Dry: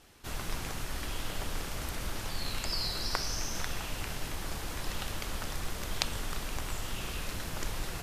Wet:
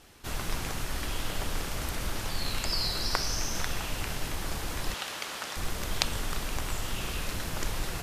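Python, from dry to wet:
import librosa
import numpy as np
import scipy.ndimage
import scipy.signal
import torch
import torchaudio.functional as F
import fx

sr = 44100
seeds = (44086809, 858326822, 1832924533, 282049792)

y = fx.weighting(x, sr, curve='A', at=(4.94, 5.57))
y = F.gain(torch.from_numpy(y), 3.5).numpy()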